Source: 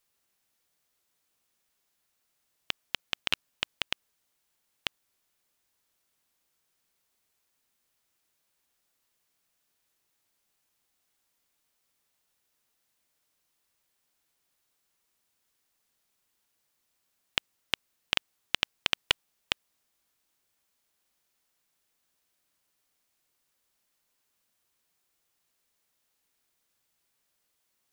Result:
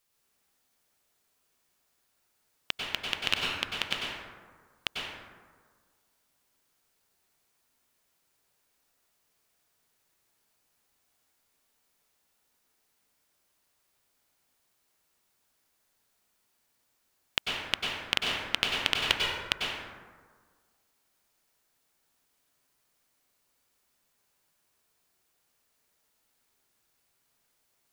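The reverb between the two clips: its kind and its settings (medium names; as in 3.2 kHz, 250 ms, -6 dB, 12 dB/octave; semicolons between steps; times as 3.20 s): plate-style reverb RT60 1.6 s, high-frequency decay 0.4×, pre-delay 85 ms, DRR -2.5 dB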